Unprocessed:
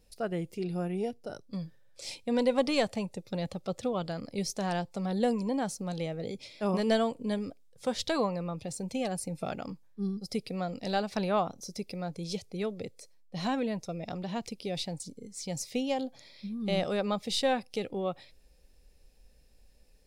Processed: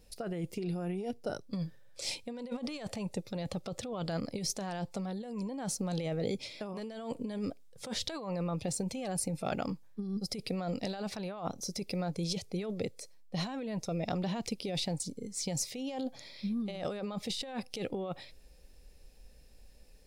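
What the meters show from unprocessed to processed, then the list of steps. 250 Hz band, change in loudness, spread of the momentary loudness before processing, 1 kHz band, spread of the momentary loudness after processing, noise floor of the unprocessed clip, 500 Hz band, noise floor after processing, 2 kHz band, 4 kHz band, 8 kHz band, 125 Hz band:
-3.5 dB, -4.0 dB, 12 LU, -7.0 dB, 6 LU, -59 dBFS, -6.5 dB, -55 dBFS, -6.0 dB, -2.0 dB, +2.5 dB, -0.5 dB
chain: compressor with a negative ratio -36 dBFS, ratio -1

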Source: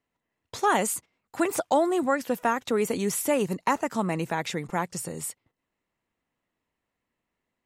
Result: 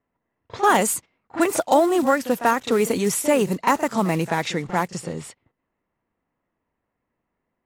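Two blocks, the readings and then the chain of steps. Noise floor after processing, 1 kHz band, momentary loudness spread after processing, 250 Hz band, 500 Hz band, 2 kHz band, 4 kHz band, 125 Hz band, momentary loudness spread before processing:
-80 dBFS, +6.0 dB, 10 LU, +5.5 dB, +5.5 dB, +5.5 dB, +6.0 dB, +6.0 dB, 10 LU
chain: block-companded coder 5-bit; pre-echo 37 ms -13.5 dB; level-controlled noise filter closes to 1.6 kHz, open at -23 dBFS; trim +5.5 dB

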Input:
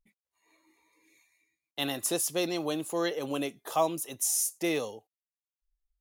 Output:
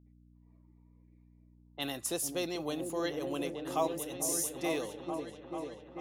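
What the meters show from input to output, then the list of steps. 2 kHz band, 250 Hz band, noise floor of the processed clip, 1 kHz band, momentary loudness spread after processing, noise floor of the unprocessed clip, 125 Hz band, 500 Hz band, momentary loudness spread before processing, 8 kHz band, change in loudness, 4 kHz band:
-4.5 dB, -3.0 dB, -62 dBFS, -4.0 dB, 10 LU, under -85 dBFS, -2.5 dB, -3.0 dB, 7 LU, -5.0 dB, -5.0 dB, -5.0 dB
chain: delay with an opening low-pass 442 ms, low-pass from 400 Hz, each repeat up 1 oct, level -3 dB; level-controlled noise filter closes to 780 Hz, open at -29 dBFS; mains buzz 60 Hz, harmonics 5, -56 dBFS -4 dB/octave; trim -5 dB

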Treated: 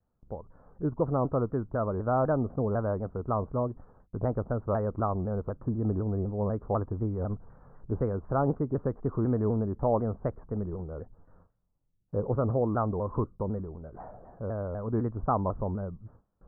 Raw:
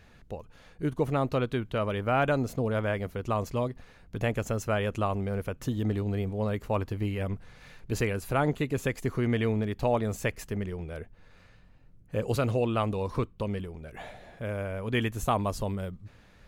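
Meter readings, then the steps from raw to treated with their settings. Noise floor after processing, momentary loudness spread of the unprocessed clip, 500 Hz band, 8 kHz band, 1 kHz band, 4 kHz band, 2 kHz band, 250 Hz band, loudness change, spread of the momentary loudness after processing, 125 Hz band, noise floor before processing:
-75 dBFS, 13 LU, 0.0 dB, under -35 dB, -0.5 dB, under -40 dB, -14.0 dB, 0.0 dB, -0.5 dB, 13 LU, 0.0 dB, -56 dBFS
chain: gate with hold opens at -45 dBFS; steep low-pass 1.3 kHz 48 dB/octave; vibrato with a chosen wave saw down 4 Hz, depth 160 cents

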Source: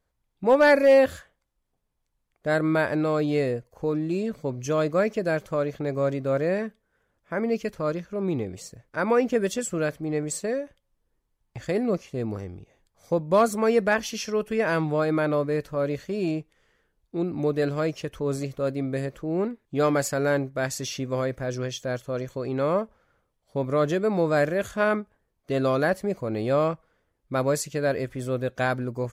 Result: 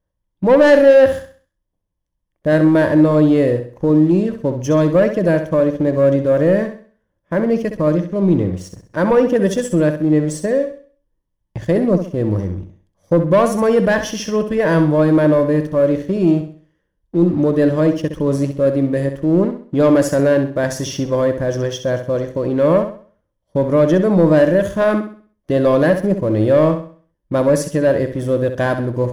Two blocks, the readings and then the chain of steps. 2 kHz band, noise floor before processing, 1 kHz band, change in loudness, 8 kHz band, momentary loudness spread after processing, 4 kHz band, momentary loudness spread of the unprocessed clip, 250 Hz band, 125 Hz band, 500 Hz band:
+4.5 dB, -76 dBFS, +5.0 dB, +10.0 dB, +3.5 dB, 9 LU, +5.0 dB, 9 LU, +12.5 dB, +11.5 dB, +9.5 dB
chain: rippled EQ curve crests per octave 1.2, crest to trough 8 dB; waveshaping leveller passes 2; tilt shelf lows +5 dB, about 780 Hz; flutter echo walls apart 11.2 m, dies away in 0.44 s

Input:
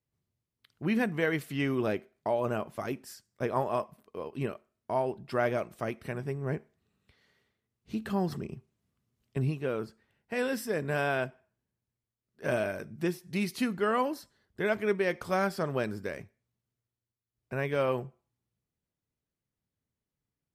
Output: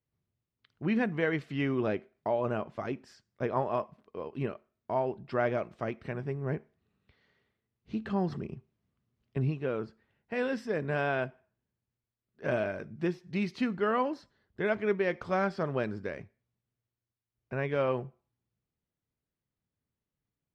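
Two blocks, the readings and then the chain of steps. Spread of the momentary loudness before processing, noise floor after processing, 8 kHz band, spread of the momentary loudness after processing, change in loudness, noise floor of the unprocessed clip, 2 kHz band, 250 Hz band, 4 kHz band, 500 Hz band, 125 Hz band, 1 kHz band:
11 LU, under -85 dBFS, under -10 dB, 10 LU, -0.5 dB, under -85 dBFS, -1.5 dB, 0.0 dB, -4.0 dB, -0.5 dB, 0.0 dB, -0.5 dB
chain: distance through air 160 m

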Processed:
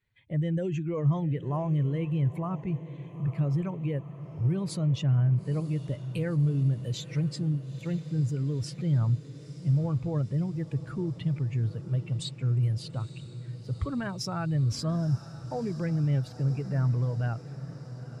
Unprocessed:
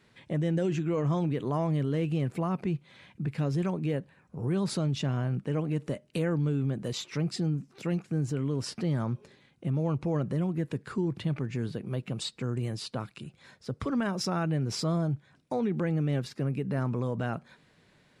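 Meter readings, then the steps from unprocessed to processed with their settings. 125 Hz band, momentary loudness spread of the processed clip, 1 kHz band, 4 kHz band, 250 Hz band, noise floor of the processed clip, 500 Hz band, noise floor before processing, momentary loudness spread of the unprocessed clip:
+4.0 dB, 9 LU, -3.0 dB, -2.5 dB, -1.0 dB, -45 dBFS, -4.0 dB, -64 dBFS, 7 LU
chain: expander on every frequency bin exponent 1.5; resonant low shelf 150 Hz +9.5 dB, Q 1.5; on a send: echo that smears into a reverb 928 ms, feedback 70%, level -15 dB

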